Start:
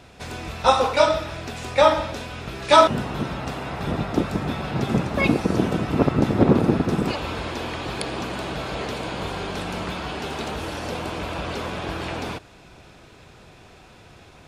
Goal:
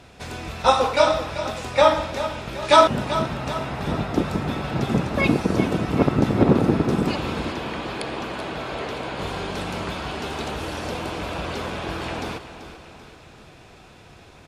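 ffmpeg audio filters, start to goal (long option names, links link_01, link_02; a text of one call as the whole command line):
ffmpeg -i in.wav -filter_complex "[0:a]asettb=1/sr,asplit=3[link_01][link_02][link_03];[link_01]atrim=end=7.524[link_04];[link_02]atrim=start=7.52:end=9.19,asetpts=PTS-STARTPTS,afade=type=in:duration=0.004:curve=qsin,afade=type=out:start_time=1.666:duration=0.004:curve=qsin,bass=frequency=250:gain=-5,treble=frequency=4000:gain=-6[link_05];[link_03]atrim=start=9.186[link_06];[link_04][link_05]acrossfade=duration=0.004:curve1=hsin:curve2=qsin[link_07];[link_07][link_06]acrossfade=duration=0.004:curve1=qsin:curve2=hsin,asplit=2[link_08][link_09];[link_09]aecho=0:1:387|774|1161|1548|1935:0.251|0.128|0.0653|0.0333|0.017[link_10];[link_08][link_10]amix=inputs=2:normalize=0,aresample=32000,aresample=44100" out.wav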